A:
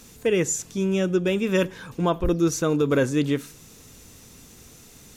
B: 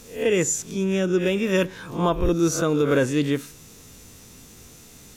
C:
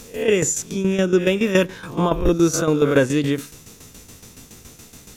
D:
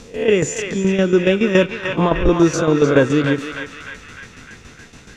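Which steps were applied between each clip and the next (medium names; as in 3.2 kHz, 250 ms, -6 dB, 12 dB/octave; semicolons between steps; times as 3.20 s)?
reverse spectral sustain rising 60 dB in 0.38 s
tremolo saw down 7.1 Hz, depth 70%; trim +6.5 dB
distance through air 100 m; band-passed feedback delay 303 ms, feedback 67%, band-pass 1.9 kHz, level -3 dB; trim +3 dB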